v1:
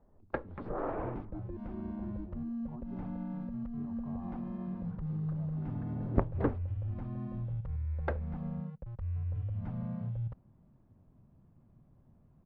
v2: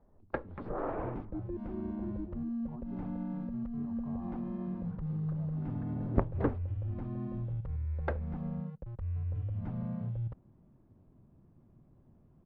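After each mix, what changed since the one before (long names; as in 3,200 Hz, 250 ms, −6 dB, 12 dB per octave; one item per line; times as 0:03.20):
second sound: add parametric band 350 Hz +6 dB 0.76 octaves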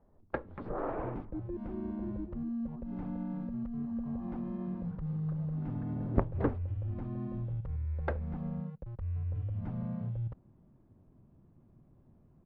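speech −4.0 dB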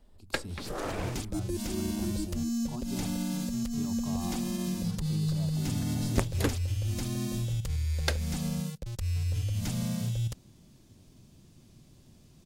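speech +8.5 dB
first sound −4.5 dB
master: remove transistor ladder low-pass 1,500 Hz, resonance 20%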